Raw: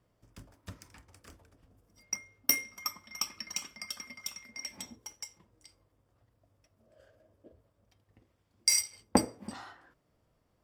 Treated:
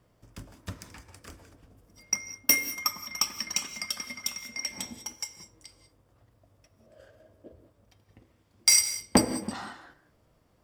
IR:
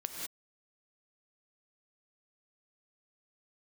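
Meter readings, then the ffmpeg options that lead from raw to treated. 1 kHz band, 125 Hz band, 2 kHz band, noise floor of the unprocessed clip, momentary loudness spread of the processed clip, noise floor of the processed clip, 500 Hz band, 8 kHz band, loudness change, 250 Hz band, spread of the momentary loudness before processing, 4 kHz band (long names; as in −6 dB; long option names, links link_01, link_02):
+4.0 dB, +6.0 dB, +7.0 dB, −75 dBFS, 21 LU, −67 dBFS, +4.0 dB, +6.5 dB, +6.0 dB, +5.0 dB, 20 LU, +6.5 dB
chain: -filter_complex "[0:a]asoftclip=type=hard:threshold=-19dB,asplit=2[link_01][link_02];[1:a]atrim=start_sample=2205[link_03];[link_02][link_03]afir=irnorm=-1:irlink=0,volume=-7dB[link_04];[link_01][link_04]amix=inputs=2:normalize=0,volume=4.5dB"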